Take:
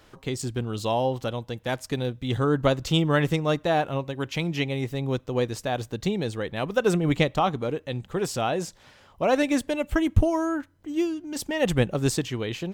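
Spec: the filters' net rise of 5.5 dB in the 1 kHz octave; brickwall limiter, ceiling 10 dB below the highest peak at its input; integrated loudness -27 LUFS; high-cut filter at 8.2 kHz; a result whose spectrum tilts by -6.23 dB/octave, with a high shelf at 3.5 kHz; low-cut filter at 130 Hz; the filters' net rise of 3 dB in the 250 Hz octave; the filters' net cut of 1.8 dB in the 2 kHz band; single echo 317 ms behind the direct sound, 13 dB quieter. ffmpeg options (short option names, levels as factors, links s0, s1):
-af "highpass=130,lowpass=8200,equalizer=f=250:t=o:g=4,equalizer=f=1000:t=o:g=9,equalizer=f=2000:t=o:g=-3.5,highshelf=f=3500:g=-8.5,alimiter=limit=0.224:level=0:latency=1,aecho=1:1:317:0.224,volume=0.841"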